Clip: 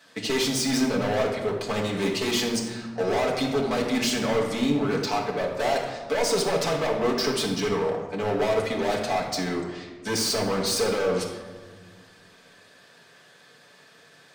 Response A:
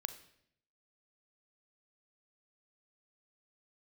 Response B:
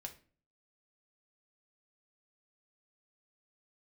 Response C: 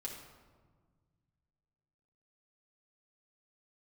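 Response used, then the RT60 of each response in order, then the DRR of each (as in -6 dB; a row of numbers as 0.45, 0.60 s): C; 0.70, 0.40, 1.6 s; 10.0, 3.0, -3.0 dB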